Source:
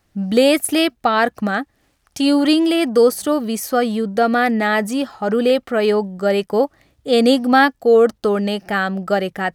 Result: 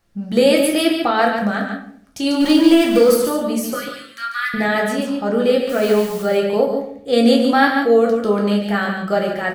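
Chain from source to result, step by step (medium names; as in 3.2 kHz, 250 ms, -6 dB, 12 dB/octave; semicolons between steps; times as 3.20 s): 2.40–3.16 s: jump at every zero crossing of -21.5 dBFS; 3.74–4.54 s: steep high-pass 1.2 kHz 48 dB/octave; 5.69–6.23 s: word length cut 6-bit, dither triangular; delay 143 ms -6.5 dB; simulated room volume 89 m³, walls mixed, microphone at 0.76 m; trim -4 dB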